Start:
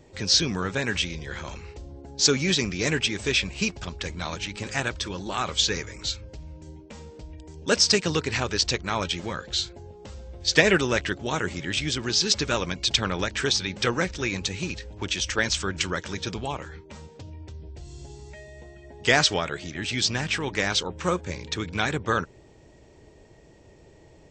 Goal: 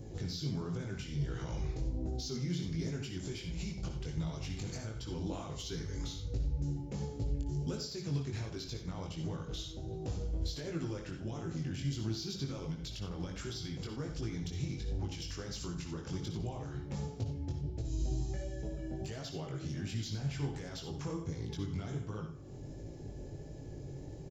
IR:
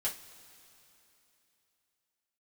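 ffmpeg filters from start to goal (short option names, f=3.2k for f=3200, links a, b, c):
-filter_complex "[0:a]bandreject=f=69.03:t=h:w=4,bandreject=f=138.06:t=h:w=4,bandreject=f=207.09:t=h:w=4,acompressor=threshold=-39dB:ratio=3,equalizer=f=140:w=2.9:g=10.5,alimiter=level_in=7dB:limit=-24dB:level=0:latency=1:release=166,volume=-7dB,asetrate=40440,aresample=44100,atempo=1.09051,asoftclip=type=tanh:threshold=-28.5dB,equalizer=f=2k:w=0.49:g=-13.5,asplit=2[a][b];[b]adelay=93.29,volume=-12dB,highshelf=f=4k:g=-2.1[c];[a][c]amix=inputs=2:normalize=0,flanger=delay=18:depth=4:speed=1.4,asplit=2[d][e];[1:a]atrim=start_sample=2205,afade=t=out:st=0.38:d=0.01,atrim=end_sample=17199,adelay=57[f];[e][f]afir=irnorm=-1:irlink=0,volume=-9dB[g];[d][g]amix=inputs=2:normalize=0,volume=8.5dB"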